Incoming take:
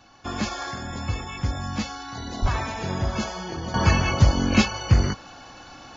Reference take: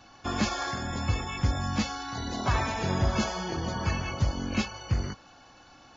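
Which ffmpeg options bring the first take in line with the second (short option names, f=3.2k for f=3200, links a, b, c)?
-filter_complex "[0:a]asplit=3[a][b][c];[a]afade=t=out:st=2.41:d=0.02[d];[b]highpass=f=140:w=0.5412,highpass=f=140:w=1.3066,afade=t=in:st=2.41:d=0.02,afade=t=out:st=2.53:d=0.02[e];[c]afade=t=in:st=2.53:d=0.02[f];[d][e][f]amix=inputs=3:normalize=0,agate=range=-21dB:threshold=-36dB,asetnsamples=n=441:p=0,asendcmd='3.74 volume volume -10dB',volume=0dB"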